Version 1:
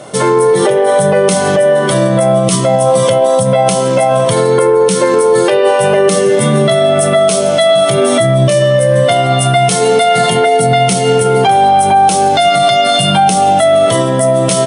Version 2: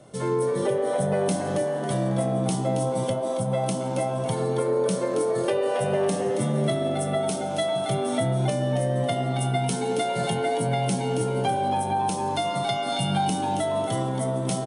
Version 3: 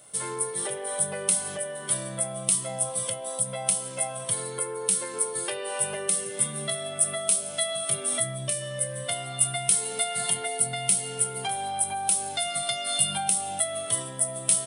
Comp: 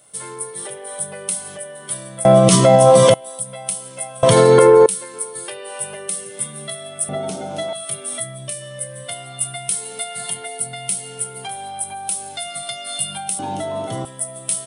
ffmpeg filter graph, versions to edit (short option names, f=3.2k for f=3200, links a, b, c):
-filter_complex "[0:a]asplit=2[a][b];[1:a]asplit=2[c][d];[2:a]asplit=5[e][f][g][h][i];[e]atrim=end=2.252[j];[a]atrim=start=2.248:end=3.142[k];[f]atrim=start=3.138:end=4.232[l];[b]atrim=start=4.228:end=4.862[m];[g]atrim=start=4.858:end=7.092[n];[c]atrim=start=7.088:end=7.732[o];[h]atrim=start=7.728:end=13.392[p];[d]atrim=start=13.388:end=14.052[q];[i]atrim=start=14.048[r];[j][k]acrossfade=d=0.004:c1=hsin:c2=hsin[s];[s][l]acrossfade=d=0.004:c1=hsin:c2=hsin[t];[t][m]acrossfade=d=0.004:c1=hsin:c2=hsin[u];[u][n]acrossfade=d=0.004:c1=hsin:c2=hsin[v];[v][o]acrossfade=d=0.004:c1=hsin:c2=hsin[w];[w][p]acrossfade=d=0.004:c1=hsin:c2=hsin[x];[x][q]acrossfade=d=0.004:c1=hsin:c2=hsin[y];[y][r]acrossfade=d=0.004:c1=hsin:c2=hsin"